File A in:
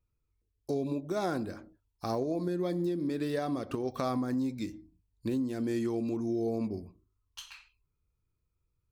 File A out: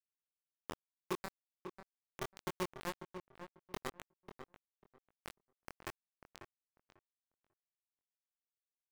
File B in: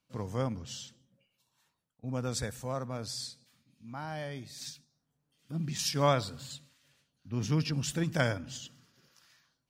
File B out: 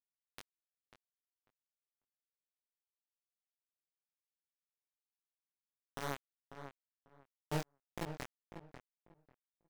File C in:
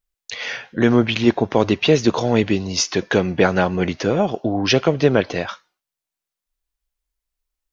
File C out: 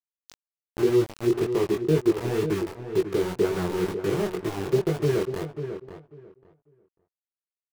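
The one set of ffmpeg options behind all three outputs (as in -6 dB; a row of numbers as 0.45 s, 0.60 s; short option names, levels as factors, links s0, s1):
-filter_complex "[0:a]firequalizer=gain_entry='entry(110,0);entry(160,5);entry(230,-11);entry(380,11);entry(540,-10);entry(1200,-5);entry(1800,-19);entry(4600,-21);entry(8500,-26)':delay=0.05:min_phase=1,acompressor=mode=upward:threshold=0.0794:ratio=2.5,aeval=exprs='val(0)*gte(abs(val(0)),0.112)':c=same,flanger=delay=18.5:depth=5.5:speed=2,asplit=2[s0][s1];[s1]adelay=544,lowpass=f=1800:p=1,volume=0.355,asplit=2[s2][s3];[s3]adelay=544,lowpass=f=1800:p=1,volume=0.19,asplit=2[s4][s5];[s5]adelay=544,lowpass=f=1800:p=1,volume=0.19[s6];[s2][s4][s6]amix=inputs=3:normalize=0[s7];[s0][s7]amix=inputs=2:normalize=0,volume=0.501"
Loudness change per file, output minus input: -14.5 LU, -11.5 LU, -7.0 LU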